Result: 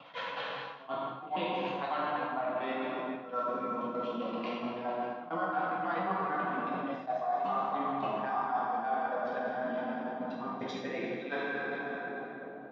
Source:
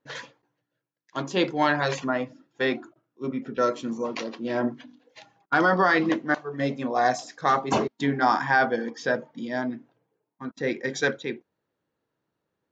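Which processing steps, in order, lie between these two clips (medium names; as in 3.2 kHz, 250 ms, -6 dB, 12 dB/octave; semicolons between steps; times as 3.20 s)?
slices played last to first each 136 ms, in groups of 3; cabinet simulation 160–3700 Hz, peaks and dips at 190 Hz +9 dB, 360 Hz -4 dB, 710 Hz +10 dB, 1.1 kHz +9 dB, 1.8 kHz -6 dB, 2.7 kHz +6 dB; pre-echo 93 ms -21 dB; in parallel at +1 dB: level held to a coarse grid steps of 20 dB; on the sum: flange 0.43 Hz, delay 0.7 ms, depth 9.2 ms, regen +55%; feedback echo behind a low-pass 1102 ms, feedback 61%, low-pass 500 Hz, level -22.5 dB; plate-style reverb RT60 2.4 s, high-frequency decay 0.7×, DRR -5.5 dB; reverse; compression 4:1, threshold -35 dBFS, peak gain reduction 24.5 dB; reverse; attacks held to a fixed rise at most 370 dB/s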